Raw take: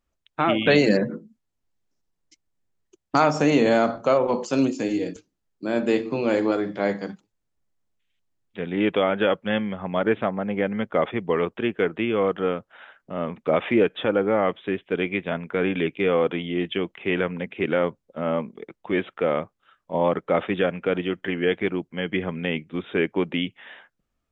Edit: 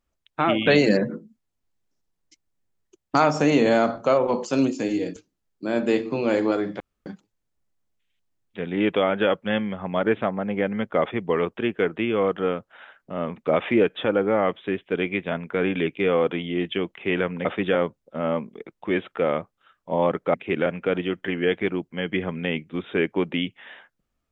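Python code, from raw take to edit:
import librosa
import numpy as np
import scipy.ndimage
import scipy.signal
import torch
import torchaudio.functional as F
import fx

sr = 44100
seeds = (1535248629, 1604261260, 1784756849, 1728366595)

y = fx.edit(x, sr, fx.room_tone_fill(start_s=6.8, length_s=0.26),
    fx.swap(start_s=17.45, length_s=0.32, other_s=20.36, other_length_s=0.3), tone=tone)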